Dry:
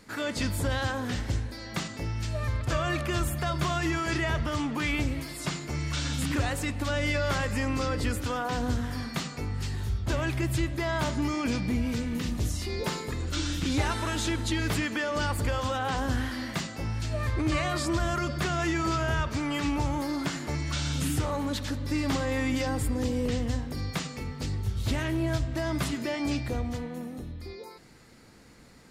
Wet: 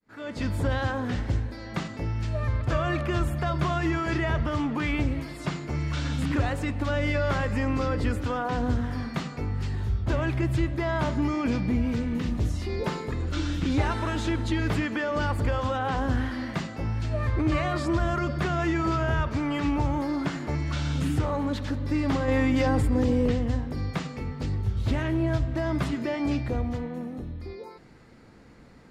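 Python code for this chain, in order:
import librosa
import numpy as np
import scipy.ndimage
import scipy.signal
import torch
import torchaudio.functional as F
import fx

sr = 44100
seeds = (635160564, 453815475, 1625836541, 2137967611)

y = fx.fade_in_head(x, sr, length_s=0.55)
y = fx.lowpass(y, sr, hz=1700.0, slope=6)
y = fx.env_flatten(y, sr, amount_pct=100, at=(22.28, 23.32))
y = y * 10.0 ** (3.0 / 20.0)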